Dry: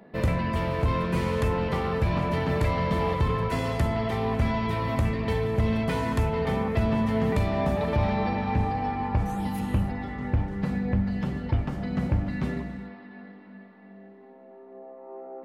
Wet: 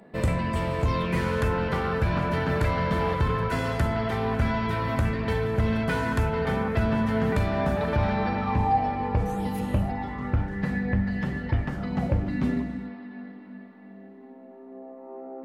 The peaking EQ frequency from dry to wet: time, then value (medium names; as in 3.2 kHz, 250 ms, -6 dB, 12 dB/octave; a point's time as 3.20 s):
peaking EQ +11 dB 0.27 oct
0.81 s 8.1 kHz
1.22 s 1.5 kHz
8.34 s 1.5 kHz
9.06 s 470 Hz
9.59 s 470 Hz
10.57 s 1.8 kHz
11.71 s 1.8 kHz
12.38 s 260 Hz